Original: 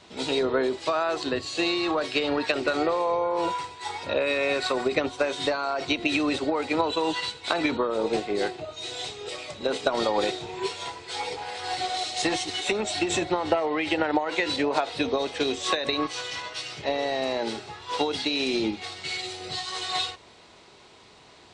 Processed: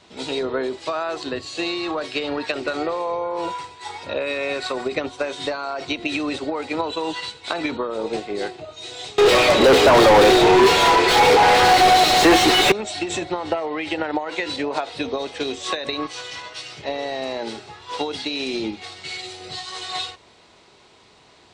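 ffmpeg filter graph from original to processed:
-filter_complex "[0:a]asettb=1/sr,asplit=3[a][b][c];[a]atrim=end=9.184[d];[b]atrim=start=9.18:end=12.72,asetpts=PTS-STARTPTS,afade=t=in:d=0.004:c=qsin,afade=t=out:st=3.536:d=0.004:c=qsin,equalizer=f=340:w=1:g=6,asplit=2[e][f];[f]highpass=f=720:p=1,volume=41dB,asoftclip=type=tanh:threshold=-4dB[g];[e][g]amix=inputs=2:normalize=0,lowpass=f=1.7k:p=1,volume=-6dB[h];[c]atrim=start=12.716[i];[d][h]acrossfade=d=0.004:c1=hsin:c2=qsin[j];[j][i]acrossfade=d=0.004:c1=qsin:c2=hsin"

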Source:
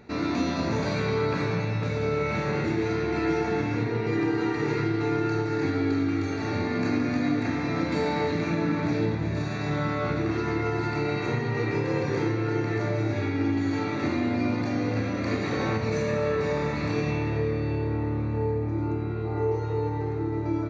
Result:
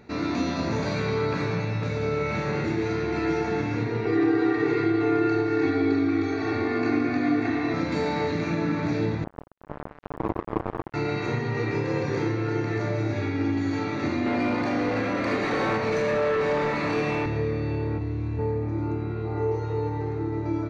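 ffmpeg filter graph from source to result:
-filter_complex "[0:a]asettb=1/sr,asplit=3[a][b][c];[a]atrim=end=4.054[d];[b]atrim=start=4.05:end=7.74,asetpts=PTS-STARTPTS,afade=t=in:d=0.004:c=qsin,afade=t=out:st=3.686:d=0.004:c=qsin,highpass=120,lowpass=4.1k,aecho=1:1:2.7:0.87,atrim=end_sample=162729[e];[c]atrim=start=7.736[f];[d][e]acrossfade=d=0.004:c1=hsin:c2=qsin[g];[g][f]acrossfade=d=0.004:c1=qsin:c2=hsin,asettb=1/sr,asplit=3[h][i][j];[h]atrim=end=9.244[k];[i]atrim=start=9.24:end=10.94,asetpts=PTS-STARTPTS,afade=t=in:d=0.004:c=qsin,afade=t=out:st=1.696:d=0.004:c=qsin,lowpass=f=410:t=q:w=2,acrusher=bits=2:mix=0:aa=0.5[l];[j]atrim=start=10.936[m];[k][l]acrossfade=d=0.004:c1=hsin:c2=qsin[n];[n][m]acrossfade=d=0.004:c1=qsin:c2=hsin,asettb=1/sr,asplit=3[o][p][q];[o]atrim=end=14.264[r];[p]atrim=start=14.26:end=17.26,asetpts=PTS-STARTPTS,afade=t=in:d=0.004:c=qsin,afade=t=out:st=2.996:d=0.004:c=qsin,highpass=99,highshelf=f=2.2k:g=3,asplit=2[s][t];[t]highpass=f=720:p=1,volume=17dB,asoftclip=type=tanh:threshold=-15dB[u];[s][u]amix=inputs=2:normalize=0,lowpass=f=1.3k:p=1,volume=-6dB[v];[q]atrim=start=17.256[w];[r][v]acrossfade=d=0.004:c1=hsin:c2=qsin[x];[x][w]acrossfade=d=0.004:c1=qsin:c2=hsin,asettb=1/sr,asplit=3[y][z][aa];[y]atrim=end=17.984[ab];[z]atrim=start=17.98:end=18.39,asetpts=PTS-STARTPTS,afade=t=in:d=0.004:c=qsin,afade=t=out:st=0.406:d=0.004:c=qsin,acrossover=split=180|3000[ac][ad][ae];[ad]acompressor=threshold=-40dB:ratio=2.5:attack=3.2:release=140:knee=2.83:detection=peak[af];[ac][af][ae]amix=inputs=3:normalize=0,asplit=2[ag][ah];[ah]adelay=30,volume=-2.5dB[ai];[ag][ai]amix=inputs=2:normalize=0,atrim=end_sample=18081[aj];[aa]atrim=start=18.386[ak];[ab][aj]acrossfade=d=0.004:c1=hsin:c2=qsin[al];[al][ak]acrossfade=d=0.004:c1=qsin:c2=hsin"

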